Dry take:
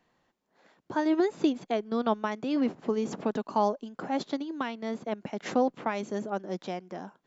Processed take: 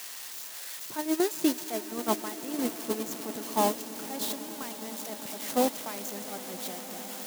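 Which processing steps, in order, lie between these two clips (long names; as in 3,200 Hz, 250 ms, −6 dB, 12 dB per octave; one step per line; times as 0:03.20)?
spike at every zero crossing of −18.5 dBFS
echo that builds up and dies away 102 ms, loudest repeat 8, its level −14.5 dB
noise gate −23 dBFS, range −10 dB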